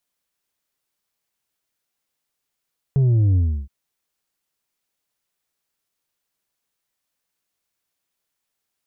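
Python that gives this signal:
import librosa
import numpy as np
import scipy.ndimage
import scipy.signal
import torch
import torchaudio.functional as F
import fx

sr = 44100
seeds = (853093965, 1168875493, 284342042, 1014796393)

y = fx.sub_drop(sr, level_db=-14.0, start_hz=140.0, length_s=0.72, drive_db=4.5, fade_s=0.32, end_hz=65.0)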